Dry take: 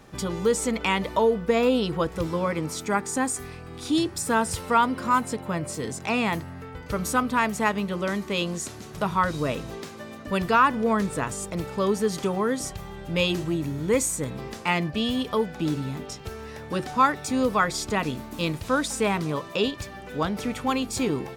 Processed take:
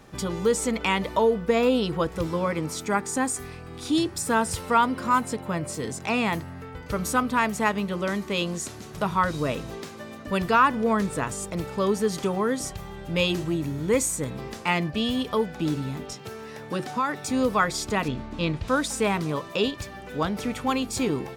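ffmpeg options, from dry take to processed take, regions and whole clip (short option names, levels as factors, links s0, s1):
-filter_complex "[0:a]asettb=1/sr,asplit=3[s0][s1][s2];[s0]atrim=end=16.134[s3];[s1]atrim=start=16.13:end=17.24,asetpts=PTS-STARTPTS,afade=t=in:d=0.004:c=qsin,afade=t=out:st=1.106:d=0.004:c=qsin,highpass=f=110:w=0.5412,highpass=f=110:w=1.3066,acompressor=threshold=0.0794:ratio=3:attack=3.2:release=140:knee=1:detection=peak[s4];[s2]atrim=start=17.236[s5];[s3][s4]acrossfade=d=0.004:c1=hsin:c2=qsin[s6];[s6][s5]acrossfade=d=0.004:c1=qsin:c2=hsin,asettb=1/sr,asplit=3[s7][s8][s9];[s7]atrim=end=18.084[s10];[s8]atrim=start=18.08:end=18.68,asetpts=PTS-STARTPTS,afade=t=in:d=0.004:c=qsin,afade=t=out:st=0.596:d=0.004:c=qsin,lowpass=4200,lowshelf=f=78:g=9.5[s11];[s9]atrim=start=18.676[s12];[s10][s11]acrossfade=d=0.004:c1=hsin:c2=qsin[s13];[s13][s12]acrossfade=d=0.004:c1=qsin:c2=hsin"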